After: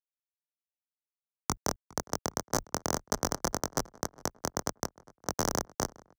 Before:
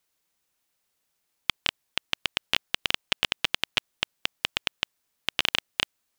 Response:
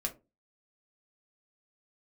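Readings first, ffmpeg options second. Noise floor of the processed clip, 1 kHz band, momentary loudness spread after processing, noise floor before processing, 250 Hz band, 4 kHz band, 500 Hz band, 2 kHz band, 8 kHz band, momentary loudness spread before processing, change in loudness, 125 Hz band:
under -85 dBFS, +3.5 dB, 7 LU, -77 dBFS, +9.0 dB, -15.0 dB, +8.0 dB, -12.5 dB, +8.5 dB, 6 LU, -5.5 dB, +8.5 dB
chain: -filter_complex "[0:a]flanger=delay=20:depth=5.4:speed=1.9,afftfilt=real='re*between(b*sr/4096,370,7700)':imag='im*between(b*sr/4096,370,7700)':win_size=4096:overlap=0.75,acrossover=split=1500[s0][s1];[s1]aeval=exprs='abs(val(0))':c=same[s2];[s0][s2]amix=inputs=2:normalize=0,afreqshift=27,aeval=exprs='sgn(val(0))*max(abs(val(0))-0.00596,0)':c=same,highshelf=f=5200:g=4,asplit=2[s3][s4];[s4]adelay=409,lowpass=f=2600:p=1,volume=0.0794,asplit=2[s5][s6];[s6]adelay=409,lowpass=f=2600:p=1,volume=0.51,asplit=2[s7][s8];[s8]adelay=409,lowpass=f=2600:p=1,volume=0.51,asplit=2[s9][s10];[s10]adelay=409,lowpass=f=2600:p=1,volume=0.51[s11];[s5][s7][s9][s11]amix=inputs=4:normalize=0[s12];[s3][s12]amix=inputs=2:normalize=0"

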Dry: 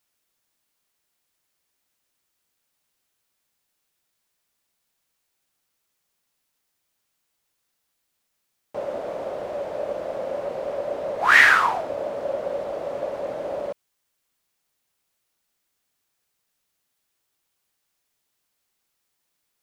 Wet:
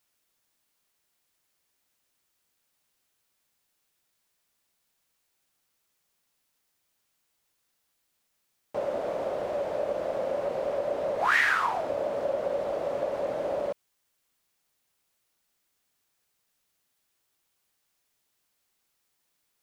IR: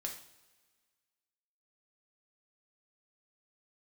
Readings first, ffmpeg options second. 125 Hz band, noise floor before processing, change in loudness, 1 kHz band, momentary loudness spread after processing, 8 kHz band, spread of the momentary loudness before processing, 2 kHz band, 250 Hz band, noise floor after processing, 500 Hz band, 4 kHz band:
-1.5 dB, -76 dBFS, -6.0 dB, -5.5 dB, 9 LU, -8.5 dB, 17 LU, -9.5 dB, -1.5 dB, -76 dBFS, -1.0 dB, -9.0 dB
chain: -af "acompressor=threshold=0.0562:ratio=2.5"

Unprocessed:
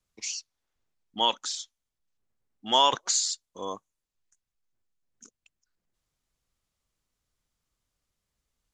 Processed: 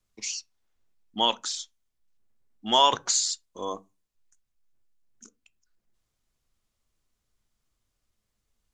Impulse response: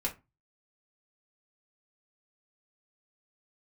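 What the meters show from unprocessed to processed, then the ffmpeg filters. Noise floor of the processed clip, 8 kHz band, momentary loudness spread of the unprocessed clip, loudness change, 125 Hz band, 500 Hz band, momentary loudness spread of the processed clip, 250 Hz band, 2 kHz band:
-80 dBFS, +1.0 dB, 21 LU, +1.5 dB, +3.0 dB, +2.0 dB, 20 LU, +3.5 dB, +1.0 dB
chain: -filter_complex "[0:a]asplit=2[s0][s1];[1:a]atrim=start_sample=2205,lowshelf=f=460:g=10[s2];[s1][s2]afir=irnorm=-1:irlink=0,volume=0.15[s3];[s0][s3]amix=inputs=2:normalize=0"

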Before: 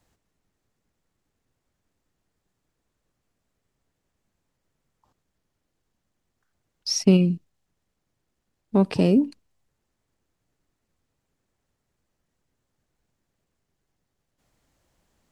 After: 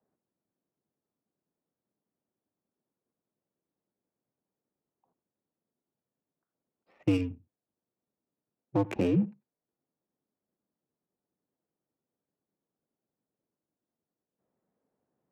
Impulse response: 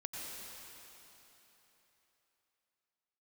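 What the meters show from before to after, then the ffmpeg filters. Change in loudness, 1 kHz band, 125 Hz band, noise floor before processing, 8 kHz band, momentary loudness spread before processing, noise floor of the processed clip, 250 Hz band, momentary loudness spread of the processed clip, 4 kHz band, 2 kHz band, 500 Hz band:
-8.5 dB, -5.0 dB, -9.0 dB, -79 dBFS, under -20 dB, 14 LU, under -85 dBFS, -9.0 dB, 8 LU, -19.0 dB, -5.0 dB, -8.5 dB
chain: -filter_complex "[0:a]highpass=f=270:t=q:w=0.5412,highpass=f=270:t=q:w=1.307,lowpass=f=3000:t=q:w=0.5176,lowpass=f=3000:t=q:w=0.7071,lowpass=f=3000:t=q:w=1.932,afreqshift=-85,asplit=2[s0][s1];[1:a]atrim=start_sample=2205,atrim=end_sample=4410[s2];[s1][s2]afir=irnorm=-1:irlink=0,volume=0.841[s3];[s0][s3]amix=inputs=2:normalize=0,adynamicsmooth=sensitivity=4:basefreq=820,volume=0.447"

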